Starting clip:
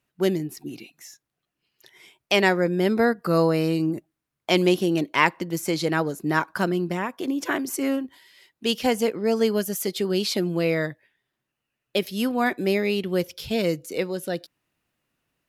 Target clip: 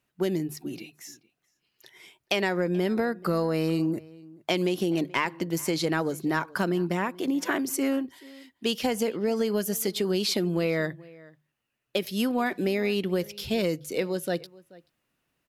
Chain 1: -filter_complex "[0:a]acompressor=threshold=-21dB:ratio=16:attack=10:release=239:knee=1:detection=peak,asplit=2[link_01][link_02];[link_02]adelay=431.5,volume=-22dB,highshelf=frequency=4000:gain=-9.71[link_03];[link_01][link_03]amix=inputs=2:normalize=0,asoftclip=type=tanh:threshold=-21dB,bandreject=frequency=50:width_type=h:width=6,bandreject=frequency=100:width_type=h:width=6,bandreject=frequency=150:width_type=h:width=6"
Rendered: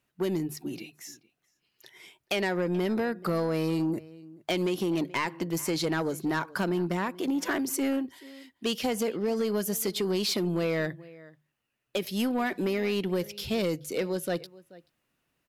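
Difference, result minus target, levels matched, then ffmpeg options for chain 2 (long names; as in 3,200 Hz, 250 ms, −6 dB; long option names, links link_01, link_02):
soft clipping: distortion +15 dB
-filter_complex "[0:a]acompressor=threshold=-21dB:ratio=16:attack=10:release=239:knee=1:detection=peak,asplit=2[link_01][link_02];[link_02]adelay=431.5,volume=-22dB,highshelf=frequency=4000:gain=-9.71[link_03];[link_01][link_03]amix=inputs=2:normalize=0,asoftclip=type=tanh:threshold=-10.5dB,bandreject=frequency=50:width_type=h:width=6,bandreject=frequency=100:width_type=h:width=6,bandreject=frequency=150:width_type=h:width=6"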